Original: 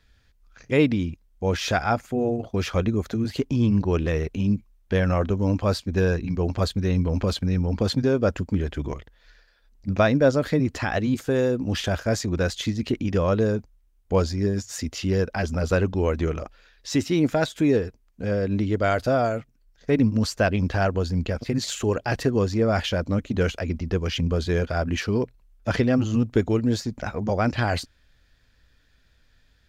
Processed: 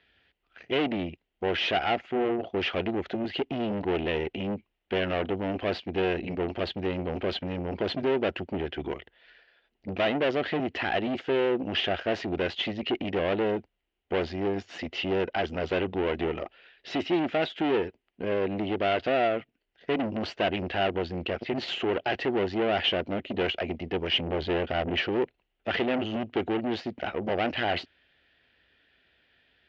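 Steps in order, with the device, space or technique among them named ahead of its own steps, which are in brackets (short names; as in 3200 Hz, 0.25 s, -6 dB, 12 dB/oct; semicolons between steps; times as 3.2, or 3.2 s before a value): 24.27–25.09 low shelf 280 Hz +8 dB; guitar amplifier (tube stage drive 26 dB, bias 0.6; tone controls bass -6 dB, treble 0 dB; speaker cabinet 95–3700 Hz, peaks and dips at 120 Hz -7 dB, 370 Hz +7 dB, 720 Hz +6 dB, 1100 Hz -4 dB, 2000 Hz +5 dB, 2900 Hz +10 dB); gain +2 dB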